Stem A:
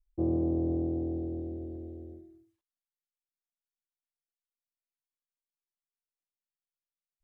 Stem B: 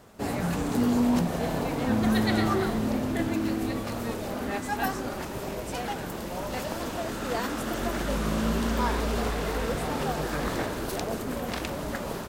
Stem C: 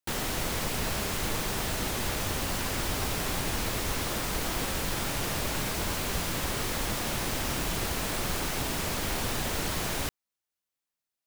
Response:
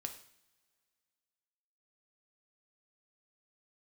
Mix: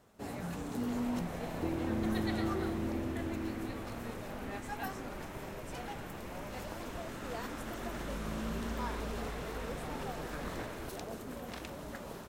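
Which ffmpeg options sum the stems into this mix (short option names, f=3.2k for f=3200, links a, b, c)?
-filter_complex "[0:a]acompressor=threshold=-35dB:ratio=6,adelay=1450,volume=0.5dB[a];[1:a]bandreject=f=4.7k:w=27,volume=-11.5dB[b];[2:a]lowpass=f=2.5k:w=0.5412,lowpass=f=2.5k:w=1.3066,adelay=800,volume=-15dB[c];[a][b][c]amix=inputs=3:normalize=0"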